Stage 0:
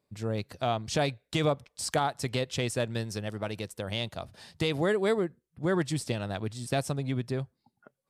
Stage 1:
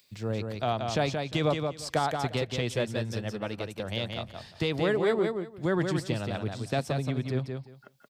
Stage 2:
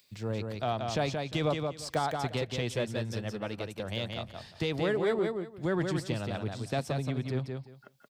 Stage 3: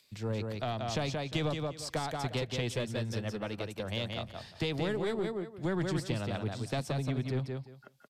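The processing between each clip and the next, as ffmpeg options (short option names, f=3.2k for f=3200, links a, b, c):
-filter_complex "[0:a]equalizer=f=9.8k:t=o:w=1:g=-10,acrossover=split=190|2500[a][b][c];[c]acompressor=mode=upward:threshold=-46dB:ratio=2.5[d];[a][b][d]amix=inputs=3:normalize=0,aecho=1:1:176|352|528:0.562|0.101|0.0182"
-filter_complex "[0:a]asplit=2[a][b];[b]asoftclip=type=tanh:threshold=-29dB,volume=-9dB[c];[a][c]amix=inputs=2:normalize=0,deesser=0.65,volume=-4dB"
-filter_complex "[0:a]aeval=exprs='0.15*(cos(1*acos(clip(val(0)/0.15,-1,1)))-cos(1*PI/2))+0.015*(cos(4*acos(clip(val(0)/0.15,-1,1)))-cos(4*PI/2))+0.00422*(cos(6*acos(clip(val(0)/0.15,-1,1)))-cos(6*PI/2))':c=same,acrossover=split=260|3000[a][b][c];[b]acompressor=threshold=-33dB:ratio=6[d];[a][d][c]amix=inputs=3:normalize=0,aresample=32000,aresample=44100"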